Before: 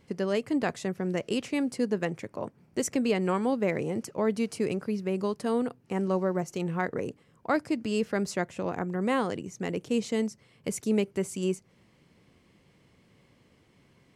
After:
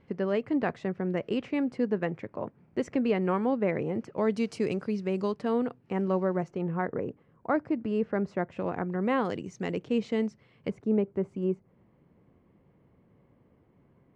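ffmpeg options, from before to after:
ffmpeg -i in.wav -af "asetnsamples=nb_out_samples=441:pad=0,asendcmd='4.17 lowpass f 5600;5.32 lowpass f 3100;6.48 lowpass f 1500;8.52 lowpass f 2600;9.25 lowpass f 4900;9.79 lowpass f 2900;10.7 lowpass f 1100',lowpass=2300" out.wav

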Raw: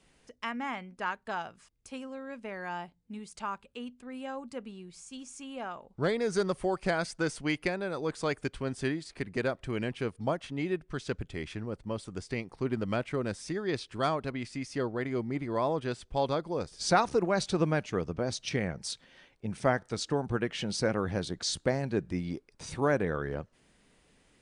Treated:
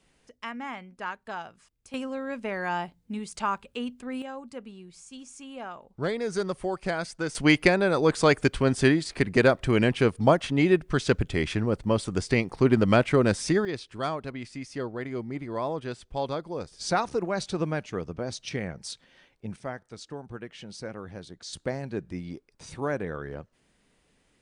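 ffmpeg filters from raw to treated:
ffmpeg -i in.wav -af "asetnsamples=nb_out_samples=441:pad=0,asendcmd='1.94 volume volume 8dB;4.22 volume volume 0dB;7.35 volume volume 11dB;13.65 volume volume -1dB;19.56 volume volume -9dB;21.53 volume volume -2.5dB',volume=-1dB" out.wav

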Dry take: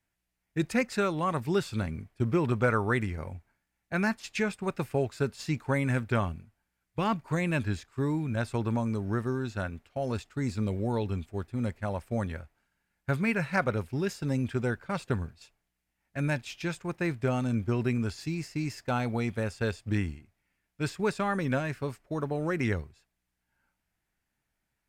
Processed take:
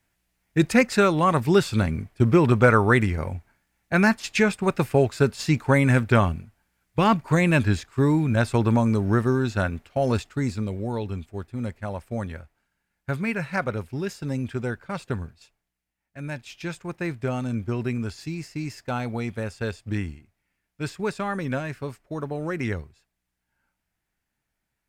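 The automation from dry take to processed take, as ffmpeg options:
ffmpeg -i in.wav -af "volume=16dB,afade=type=out:start_time=10.14:duration=0.52:silence=0.398107,afade=type=out:start_time=15.26:duration=0.92:silence=0.446684,afade=type=in:start_time=16.18:duration=0.52:silence=0.446684" out.wav

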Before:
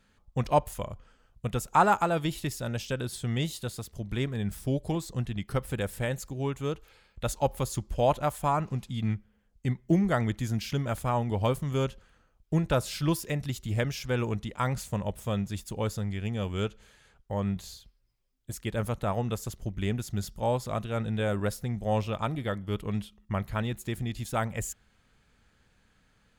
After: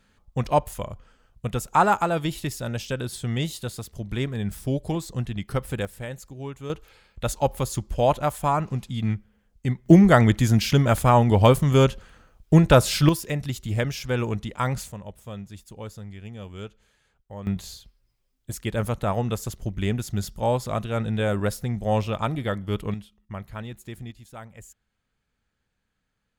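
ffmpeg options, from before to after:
ffmpeg -i in.wav -af "asetnsamples=nb_out_samples=441:pad=0,asendcmd='5.85 volume volume -4dB;6.7 volume volume 4dB;9.86 volume volume 11dB;13.09 volume volume 3.5dB;14.92 volume volume -7dB;17.47 volume volume 4.5dB;22.94 volume volume -5dB;24.11 volume volume -12dB',volume=3dB" out.wav

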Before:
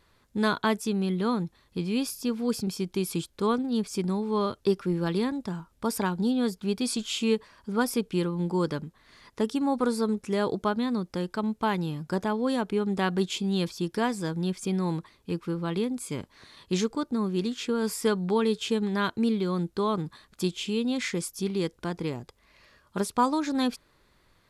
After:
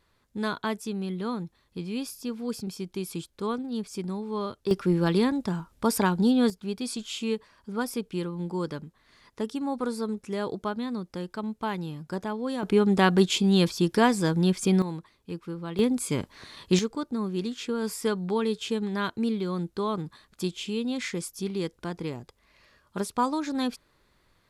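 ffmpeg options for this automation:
ffmpeg -i in.wav -af "asetnsamples=nb_out_samples=441:pad=0,asendcmd='4.71 volume volume 4dB;6.5 volume volume -4dB;12.63 volume volume 6dB;14.82 volume volume -5dB;15.79 volume volume 5.5dB;16.79 volume volume -2dB',volume=-4.5dB" out.wav

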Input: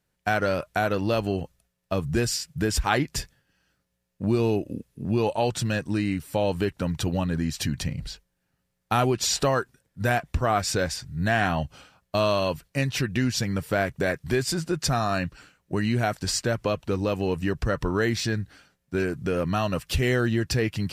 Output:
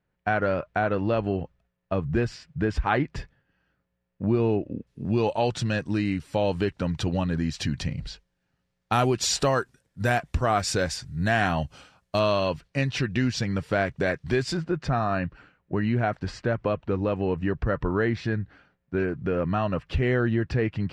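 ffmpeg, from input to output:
ffmpeg -i in.wav -af "asetnsamples=nb_out_samples=441:pad=0,asendcmd='4.87 lowpass f 5400;8.93 lowpass f 9700;12.19 lowpass f 4800;14.57 lowpass f 2100',lowpass=2200" out.wav

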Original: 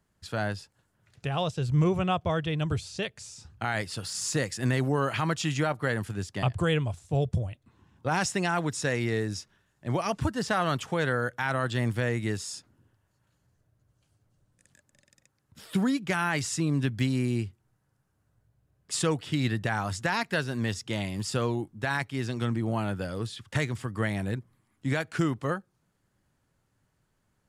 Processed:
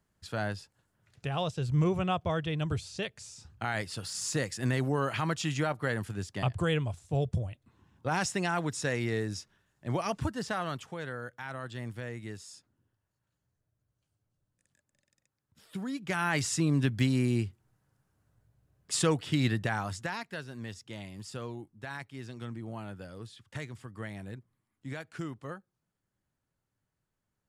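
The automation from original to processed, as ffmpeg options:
ffmpeg -i in.wav -af "volume=8.5dB,afade=type=out:start_time=10.08:duration=0.88:silence=0.375837,afade=type=in:start_time=15.85:duration=0.55:silence=0.266073,afade=type=out:start_time=19.44:duration=0.82:silence=0.266073" out.wav

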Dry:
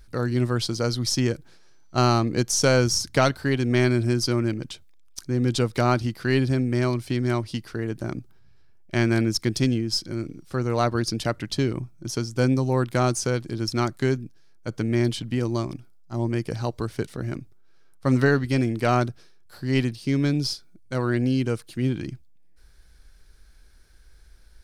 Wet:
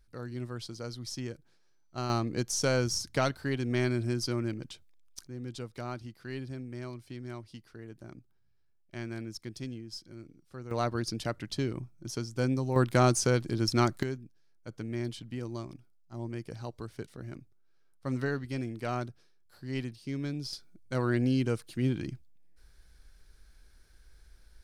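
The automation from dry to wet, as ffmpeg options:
ffmpeg -i in.wav -af "asetnsamples=nb_out_samples=441:pad=0,asendcmd='2.1 volume volume -8.5dB;5.27 volume volume -17.5dB;10.71 volume volume -8dB;12.76 volume volume -1.5dB;14.03 volume volume -12.5dB;20.53 volume volume -4.5dB',volume=-15dB" out.wav

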